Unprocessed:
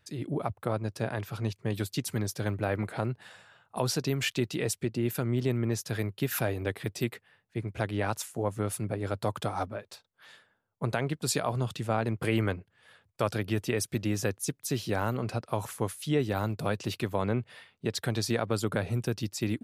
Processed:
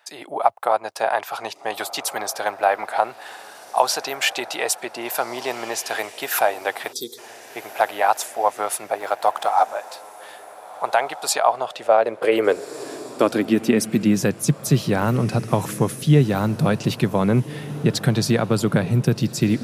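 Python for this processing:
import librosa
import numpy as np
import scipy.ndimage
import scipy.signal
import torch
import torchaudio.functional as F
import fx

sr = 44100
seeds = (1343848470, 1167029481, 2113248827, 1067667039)

p1 = fx.law_mismatch(x, sr, coded='A', at=(9.0, 9.52))
p2 = fx.echo_diffused(p1, sr, ms=1569, feedback_pct=41, wet_db=-16.0)
p3 = fx.filter_sweep_highpass(p2, sr, from_hz=770.0, to_hz=150.0, start_s=11.47, end_s=14.44, q=3.5)
p4 = fx.high_shelf(p3, sr, hz=7400.0, db=-10.5, at=(11.33, 12.32))
p5 = fx.rider(p4, sr, range_db=4, speed_s=0.5)
p6 = p4 + (p5 * librosa.db_to_amplitude(-1.0))
p7 = fx.spec_box(p6, sr, start_s=6.93, length_s=0.25, low_hz=510.0, high_hz=3200.0, gain_db=-29)
y = p7 * librosa.db_to_amplitude(3.0)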